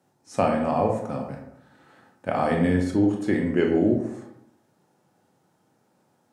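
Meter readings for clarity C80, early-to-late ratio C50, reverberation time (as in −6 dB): 8.5 dB, 5.0 dB, 0.80 s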